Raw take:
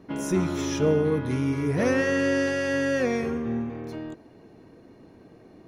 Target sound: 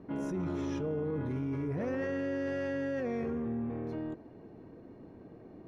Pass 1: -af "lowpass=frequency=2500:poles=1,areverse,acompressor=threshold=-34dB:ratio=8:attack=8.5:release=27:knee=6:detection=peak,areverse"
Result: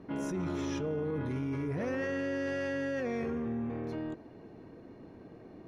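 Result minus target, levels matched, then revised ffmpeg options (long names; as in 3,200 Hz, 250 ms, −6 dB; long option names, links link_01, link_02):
2,000 Hz band +3.5 dB
-af "lowpass=frequency=1000:poles=1,areverse,acompressor=threshold=-34dB:ratio=8:attack=8.5:release=27:knee=6:detection=peak,areverse"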